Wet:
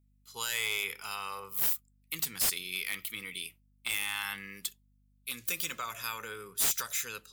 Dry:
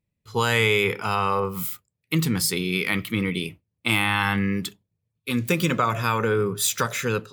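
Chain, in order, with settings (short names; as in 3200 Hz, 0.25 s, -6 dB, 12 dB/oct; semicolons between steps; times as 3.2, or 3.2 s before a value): pre-emphasis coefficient 0.97; hum 50 Hz, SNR 34 dB; wavefolder -21.5 dBFS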